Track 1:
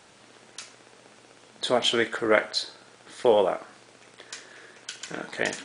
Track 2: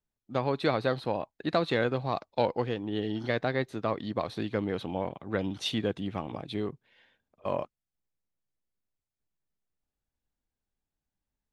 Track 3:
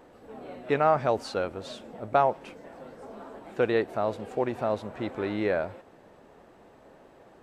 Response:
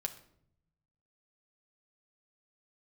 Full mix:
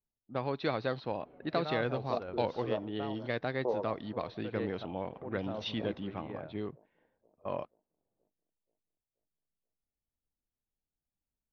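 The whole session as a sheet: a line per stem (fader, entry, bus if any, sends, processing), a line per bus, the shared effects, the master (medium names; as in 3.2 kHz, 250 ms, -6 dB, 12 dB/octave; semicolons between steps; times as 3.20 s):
-11.5 dB, 0.40 s, no send, echo send -15.5 dB, reverb removal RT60 1.9 s; elliptic low-pass 1.1 kHz, stop band 40 dB
-4.5 dB, 0.00 s, no send, no echo send, none
-4.0 dB, 0.85 s, no send, no echo send, gate with hold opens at -41 dBFS; bass shelf 230 Hz +9.5 dB; random-step tremolo, depth 85%; auto duck -8 dB, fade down 1.55 s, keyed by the second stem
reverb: none
echo: feedback delay 480 ms, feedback 53%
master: level-controlled noise filter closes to 820 Hz, open at -27.5 dBFS; elliptic low-pass 5.8 kHz, stop band 40 dB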